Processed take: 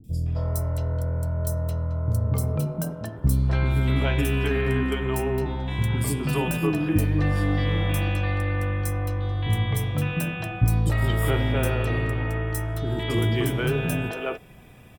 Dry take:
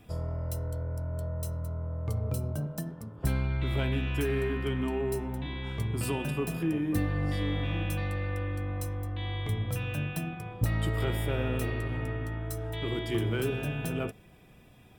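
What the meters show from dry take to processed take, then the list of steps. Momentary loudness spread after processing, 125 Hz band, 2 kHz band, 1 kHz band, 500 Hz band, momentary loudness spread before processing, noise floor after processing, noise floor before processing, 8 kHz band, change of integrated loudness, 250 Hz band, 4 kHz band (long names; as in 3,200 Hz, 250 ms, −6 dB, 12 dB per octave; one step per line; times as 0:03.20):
5 LU, +8.0 dB, +7.5 dB, +8.0 dB, +5.5 dB, 6 LU, −40 dBFS, −55 dBFS, +7.5 dB, +7.0 dB, +6.0 dB, +6.0 dB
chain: three-band delay without the direct sound lows, highs, mids 40/260 ms, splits 340/4,400 Hz
level +8 dB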